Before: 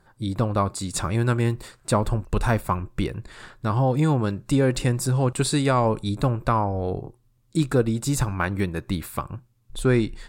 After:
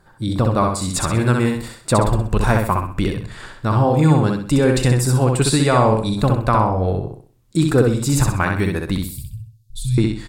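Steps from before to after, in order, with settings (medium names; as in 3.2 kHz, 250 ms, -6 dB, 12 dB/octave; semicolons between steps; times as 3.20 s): 8.98–9.98 s: elliptic band-stop 120–4000 Hz, stop band 60 dB; on a send: feedback delay 64 ms, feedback 37%, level -3.5 dB; on the sum: trim +4.5 dB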